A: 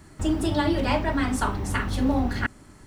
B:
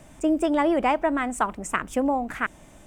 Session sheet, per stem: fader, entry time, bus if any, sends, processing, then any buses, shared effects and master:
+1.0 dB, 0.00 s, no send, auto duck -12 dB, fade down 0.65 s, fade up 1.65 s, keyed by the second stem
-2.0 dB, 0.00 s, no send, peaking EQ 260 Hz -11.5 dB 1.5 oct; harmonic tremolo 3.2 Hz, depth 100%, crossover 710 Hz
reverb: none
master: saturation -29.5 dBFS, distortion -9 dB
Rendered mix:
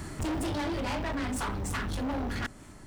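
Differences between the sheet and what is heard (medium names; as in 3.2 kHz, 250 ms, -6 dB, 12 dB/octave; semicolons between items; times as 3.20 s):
stem A +1.0 dB -> +11.5 dB; stem B: polarity flipped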